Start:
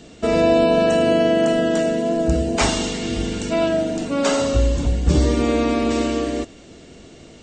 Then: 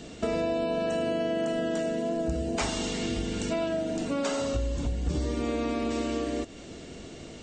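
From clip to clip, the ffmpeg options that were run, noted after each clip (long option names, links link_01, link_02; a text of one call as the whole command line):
ffmpeg -i in.wav -af "acompressor=threshold=-28dB:ratio=4" out.wav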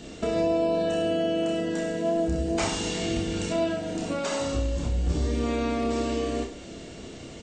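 ffmpeg -i in.wav -af "aecho=1:1:30|63|99.3|139.2|183.2:0.631|0.398|0.251|0.158|0.1" out.wav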